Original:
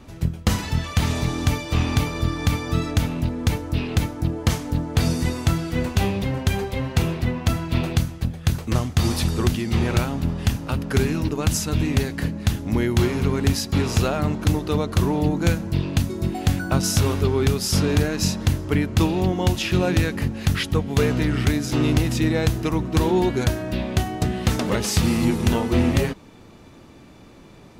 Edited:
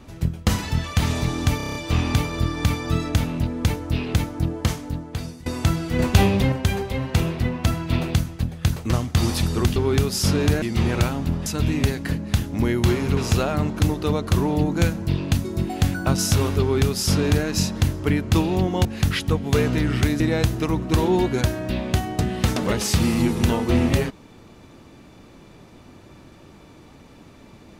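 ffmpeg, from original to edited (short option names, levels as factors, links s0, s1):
-filter_complex "[0:a]asplit=16[s0][s1][s2][s3][s4][s5][s6][s7][s8][s9][s10][s11][s12][s13][s14][s15];[s0]atrim=end=1.602[s16];[s1]atrim=start=1.568:end=1.602[s17];[s2]atrim=start=1.568:end=1.602[s18];[s3]atrim=start=1.568:end=1.602[s19];[s4]atrim=start=1.568:end=1.602[s20];[s5]atrim=start=1.568:end=1.602[s21];[s6]atrim=start=1.568:end=5.28,asetpts=PTS-STARTPTS,afade=t=out:st=2.712:d=1:silence=0.0707946[s22];[s7]atrim=start=5.28:end=5.812,asetpts=PTS-STARTPTS,afade=t=in:d=0.004:c=hsin:silence=0.0707946[s23];[s8]atrim=start=5.808:end=6.342,asetpts=PTS-STARTPTS,volume=1.78[s24];[s9]atrim=start=6.338:end=9.582[s25];[s10]atrim=start=17.248:end=18.112[s26];[s11]atrim=start=9.578:end=10.422[s27];[s12]atrim=start=11.588:end=13.302[s28];[s13]atrim=start=13.818:end=19.502[s29];[s14]atrim=start=20.288:end=21.642[s30];[s15]atrim=start=22.228[s31];[s16][s17]acrossfade=d=0.004:c1=hsin:c2=hsin[s32];[s32][s18]acrossfade=d=0.004:c1=hsin:c2=hsin[s33];[s33][s19]acrossfade=d=0.004:c1=hsin:c2=hsin[s34];[s34][s20]acrossfade=d=0.004:c1=hsin:c2=hsin[s35];[s35][s21]acrossfade=d=0.004:c1=hsin:c2=hsin[s36];[s22][s23]concat=n=2:v=0:a=1[s37];[s36][s37]acrossfade=d=0.004:c1=hsin:c2=hsin[s38];[s38][s24]acrossfade=d=0.004:c1=hsin:c2=hsin[s39];[s39][s25]acrossfade=d=0.004:c1=hsin:c2=hsin[s40];[s40][s26]acrossfade=d=0.004:c1=hsin:c2=hsin[s41];[s41][s27]acrossfade=d=0.004:c1=hsin:c2=hsin[s42];[s42][s28]acrossfade=d=0.004:c1=hsin:c2=hsin[s43];[s43][s29]acrossfade=d=0.004:c1=hsin:c2=hsin[s44];[s44][s30]acrossfade=d=0.004:c1=hsin:c2=hsin[s45];[s45][s31]acrossfade=d=0.004:c1=hsin:c2=hsin"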